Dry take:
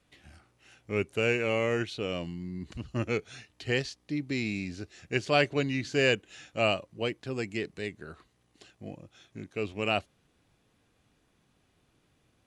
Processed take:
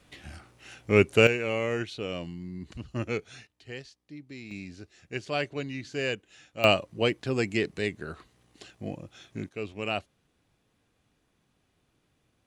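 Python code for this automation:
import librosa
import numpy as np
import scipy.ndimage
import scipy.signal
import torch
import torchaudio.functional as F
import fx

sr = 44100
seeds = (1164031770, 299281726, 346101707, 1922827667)

y = fx.gain(x, sr, db=fx.steps((0.0, 9.5), (1.27, -1.0), (3.47, -12.0), (4.51, -5.5), (6.64, 6.0), (9.49, -2.5)))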